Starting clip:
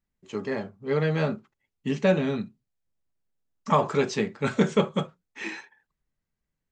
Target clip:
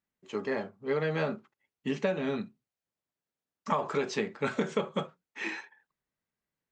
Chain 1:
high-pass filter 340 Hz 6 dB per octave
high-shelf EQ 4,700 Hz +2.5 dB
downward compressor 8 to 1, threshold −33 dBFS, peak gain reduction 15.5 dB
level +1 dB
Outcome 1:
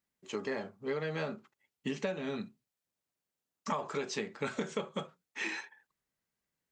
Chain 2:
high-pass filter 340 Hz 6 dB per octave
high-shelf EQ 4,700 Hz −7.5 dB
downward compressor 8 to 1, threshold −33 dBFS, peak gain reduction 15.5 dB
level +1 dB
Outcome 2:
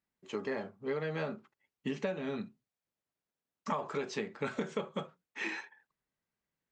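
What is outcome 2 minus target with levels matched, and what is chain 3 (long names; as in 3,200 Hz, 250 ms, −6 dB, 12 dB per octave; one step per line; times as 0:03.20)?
downward compressor: peak gain reduction +6 dB
high-pass filter 340 Hz 6 dB per octave
high-shelf EQ 4,700 Hz −7.5 dB
downward compressor 8 to 1, threshold −26 dBFS, peak gain reduction 9 dB
level +1 dB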